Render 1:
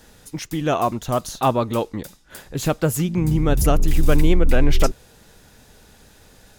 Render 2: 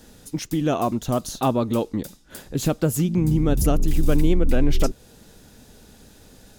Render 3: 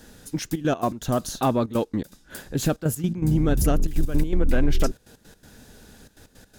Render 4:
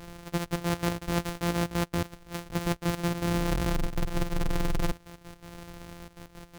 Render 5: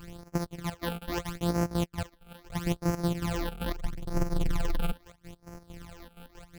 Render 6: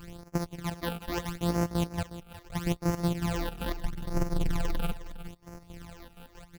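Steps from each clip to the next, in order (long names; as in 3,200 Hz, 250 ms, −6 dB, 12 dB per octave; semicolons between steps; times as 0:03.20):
graphic EQ with 10 bands 250 Hz +5 dB, 1,000 Hz −3 dB, 2,000 Hz −4 dB; in parallel at +1 dB: downward compressor, threshold −21 dBFS, peak gain reduction 12.5 dB; on the sum: level −6 dB
gate pattern "xxxxxx.x.x.x" 163 BPM −12 dB; parametric band 1,600 Hz +6.5 dB 0.32 octaves; soft clipping −9.5 dBFS, distortion −22 dB
samples sorted by size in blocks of 256 samples; reversed playback; downward compressor 5 to 1, threshold −30 dBFS, peak gain reduction 13.5 dB; reversed playback; level +4 dB
all-pass phaser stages 12, 0.77 Hz, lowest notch 100–3,500 Hz; gate pattern "xx.x.x.xxxxxxx" 129 BPM −12 dB
single-tap delay 361 ms −14 dB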